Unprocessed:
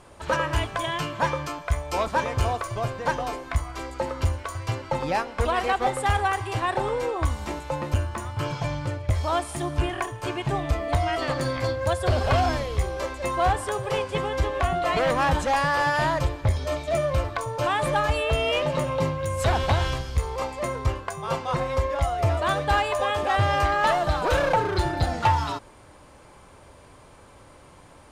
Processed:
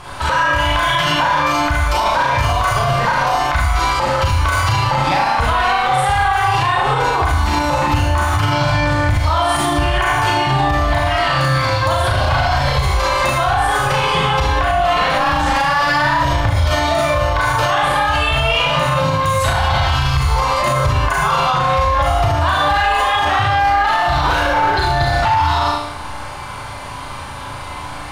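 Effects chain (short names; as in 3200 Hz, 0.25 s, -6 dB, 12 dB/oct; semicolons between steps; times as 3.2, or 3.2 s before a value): Schroeder reverb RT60 0.61 s, combs from 30 ms, DRR -4.5 dB; compressor, threshold -24 dBFS, peak gain reduction 12.5 dB; graphic EQ 250/500/1000/4000/8000 Hz -8/-8/+4/+3/-6 dB; flutter echo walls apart 6.4 m, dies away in 0.49 s; maximiser +21.5 dB; gain -6 dB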